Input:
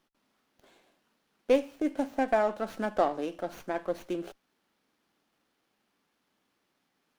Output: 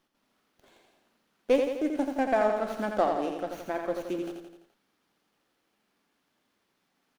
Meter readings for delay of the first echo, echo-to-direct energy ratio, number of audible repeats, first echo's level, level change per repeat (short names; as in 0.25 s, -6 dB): 85 ms, -4.0 dB, 5, -5.5 dB, -5.0 dB